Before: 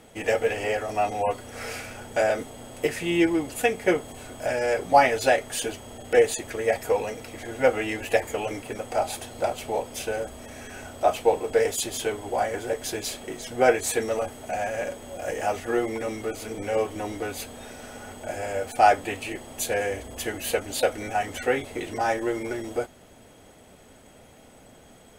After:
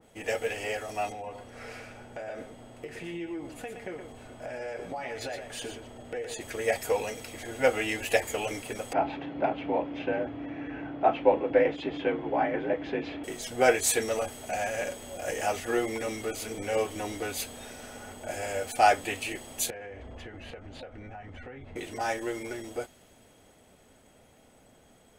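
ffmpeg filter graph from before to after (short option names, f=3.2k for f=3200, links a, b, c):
-filter_complex "[0:a]asettb=1/sr,asplit=3[a][b][c];[a]atrim=end=1.124[d];[b]atrim=start=1.12:end=6.41,asetpts=PTS-STARTPTS,afade=t=in:d=0.004:c=qsin,afade=t=out:st=5.286:d=0.004:c=qsin,lowpass=f=2.2k:p=1,acompressor=threshold=-28dB:ratio=6:attack=3.2:release=140:knee=1:detection=peak,aecho=1:1:117:0.398,atrim=end_sample=233289[e];[c]atrim=start=6.406[f];[d][e]acrossfade=d=0.004:c1=hsin:c2=qsin[g];[g][f]acrossfade=d=0.004:c1=qsin:c2=hsin,asettb=1/sr,asplit=3[h][i][j];[h]atrim=end=8.934[k];[i]atrim=start=8.93:end=13.24,asetpts=PTS-STARTPTS,afade=t=in:d=0.004:c=qsin,afade=t=out:st=4.306:d=0.004:c=qsin,lowpass=f=2.5k:w=0.5412,lowpass=f=2.5k:w=1.3066,equalizer=f=230:t=o:w=0.75:g=14,afreqshift=47[l];[j]atrim=start=13.236[m];[k][l]acrossfade=d=0.004:c1=hsin:c2=qsin[n];[n][m]acrossfade=d=0.004:c1=qsin:c2=hsin,asettb=1/sr,asplit=3[o][p][q];[o]atrim=end=19.704[r];[p]atrim=start=19.7:end=21.76,asetpts=PTS-STARTPTS,afade=t=in:d=0.004:c=qsin,afade=t=out:st=2.056:d=0.004:c=qsin,lowpass=2.2k,asubboost=boost=5.5:cutoff=210,acompressor=threshold=-34dB:ratio=10:attack=3.2:release=140:knee=1:detection=peak[s];[q]atrim=start=21.756[t];[r][s]acrossfade=d=0.004:c1=hsin:c2=qsin[u];[u][t]acrossfade=d=0.004:c1=qsin:c2=hsin,dynaudnorm=f=880:g=13:m=11.5dB,adynamicequalizer=threshold=0.0141:dfrequency=1900:dqfactor=0.7:tfrequency=1900:tqfactor=0.7:attack=5:release=100:ratio=0.375:range=3:mode=boostabove:tftype=highshelf,volume=-7.5dB"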